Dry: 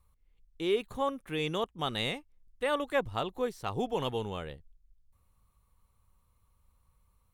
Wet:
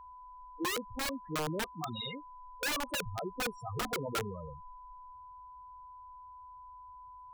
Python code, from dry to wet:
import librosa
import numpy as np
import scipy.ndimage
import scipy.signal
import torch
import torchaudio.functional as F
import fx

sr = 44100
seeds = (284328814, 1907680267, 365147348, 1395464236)

y = fx.spec_quant(x, sr, step_db=15)
y = fx.high_shelf(y, sr, hz=6500.0, db=7.0)
y = fx.spec_topn(y, sr, count=4)
y = (np.mod(10.0 ** (30.0 / 20.0) * y + 1.0, 2.0) - 1.0) / 10.0 ** (30.0 / 20.0)
y = y + 10.0 ** (-50.0 / 20.0) * np.sin(2.0 * np.pi * 1000.0 * np.arange(len(y)) / sr)
y = y * librosa.db_to_amplitude(1.5)